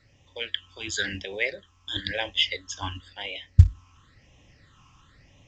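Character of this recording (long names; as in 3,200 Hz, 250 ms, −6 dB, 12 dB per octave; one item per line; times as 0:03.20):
sample-and-hold tremolo 1.6 Hz
a quantiser's noise floor 12 bits, dither none
phaser sweep stages 8, 0.97 Hz, lowest notch 540–1,400 Hz
mu-law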